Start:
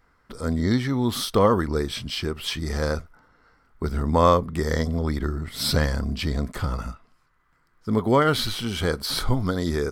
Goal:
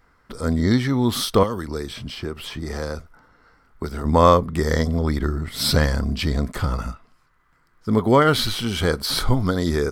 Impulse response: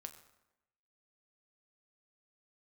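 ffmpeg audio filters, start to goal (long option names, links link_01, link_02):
-filter_complex "[0:a]asettb=1/sr,asplit=3[link_01][link_02][link_03];[link_01]atrim=end=1.434[link_04];[link_02]atrim=start=1.43:end=4.05,asetpts=PTS-STARTPTS,afade=type=in:duration=0.004:curve=qsin,afade=type=out:start_time=2.616:duration=0.004:curve=qsin,acrossover=split=270|1300|2700[link_05][link_06][link_07][link_08];[link_05]acompressor=threshold=-34dB:ratio=4[link_09];[link_06]acompressor=threshold=-32dB:ratio=4[link_10];[link_07]acompressor=threshold=-46dB:ratio=4[link_11];[link_08]acompressor=threshold=-43dB:ratio=4[link_12];[link_09][link_10][link_11][link_12]amix=inputs=4:normalize=0[link_13];[link_03]atrim=start=4.046[link_14];[link_04][link_13]acrossfade=duration=0.004:curve1=hsin:curve2=qsin[link_15];[link_15][link_14]acrossfade=duration=0.004:curve1=qsin:curve2=hsin,volume=3.5dB"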